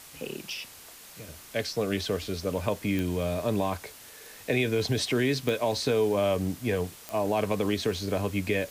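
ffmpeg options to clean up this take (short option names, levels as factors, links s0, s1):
-af "adeclick=t=4,afftdn=nr=26:nf=-48"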